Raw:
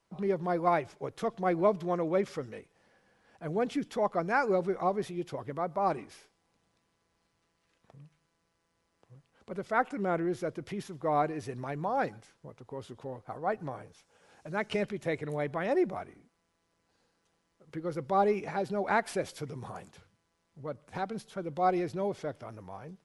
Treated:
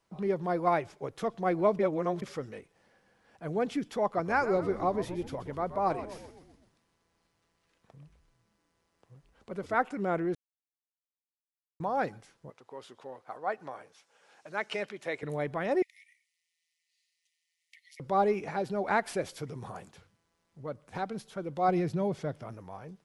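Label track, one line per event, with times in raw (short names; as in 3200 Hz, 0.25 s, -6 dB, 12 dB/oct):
1.790000	2.220000	reverse
4.040000	9.760000	frequency-shifting echo 0.127 s, feedback 55%, per repeat -88 Hz, level -12 dB
10.350000	11.800000	mute
12.500000	15.230000	weighting filter A
15.820000	18.000000	brick-wall FIR high-pass 1800 Hz
21.680000	22.540000	bell 160 Hz +9 dB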